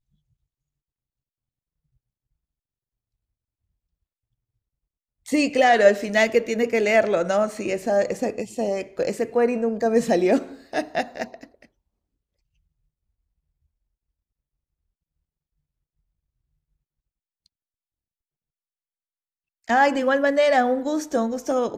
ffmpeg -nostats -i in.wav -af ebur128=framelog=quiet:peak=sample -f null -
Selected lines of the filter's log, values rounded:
Integrated loudness:
  I:         -21.5 LUFS
  Threshold: -32.1 LUFS
Loudness range:
  LRA:        11.6 LU
  Threshold: -43.7 LUFS
  LRA low:   -32.0 LUFS
  LRA high:  -20.4 LUFS
Sample peak:
  Peak:       -3.1 dBFS